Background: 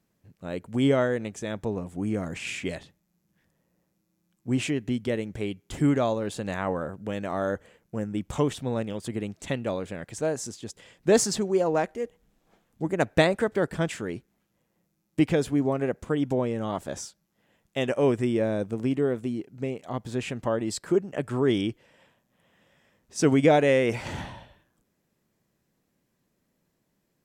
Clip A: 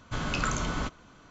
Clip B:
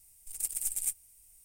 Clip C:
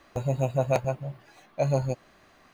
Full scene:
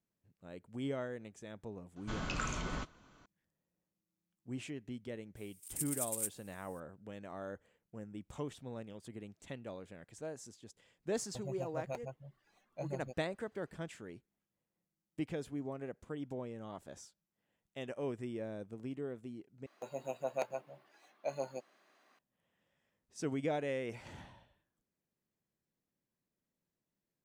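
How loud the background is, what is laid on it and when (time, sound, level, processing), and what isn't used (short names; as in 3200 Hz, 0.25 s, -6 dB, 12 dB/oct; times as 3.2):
background -16.5 dB
1.96 add A -8.5 dB
5.36 add B -3 dB + rippled Chebyshev high-pass 920 Hz, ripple 3 dB
11.19 add C -17 dB + reverb removal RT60 0.63 s
19.66 replace with C -10.5 dB + Bessel high-pass 330 Hz, order 4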